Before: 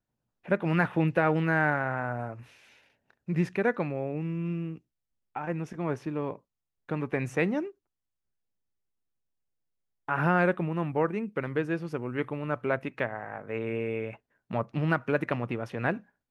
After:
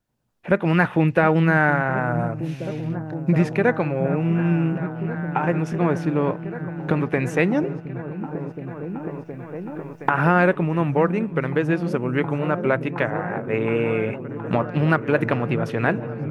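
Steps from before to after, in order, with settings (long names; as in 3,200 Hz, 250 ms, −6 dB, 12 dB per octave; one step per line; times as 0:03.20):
camcorder AGC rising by 6.6 dB per second
echo whose low-pass opens from repeat to repeat 719 ms, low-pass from 200 Hz, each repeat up 1 octave, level −6 dB
tape wow and flutter 24 cents
level +7 dB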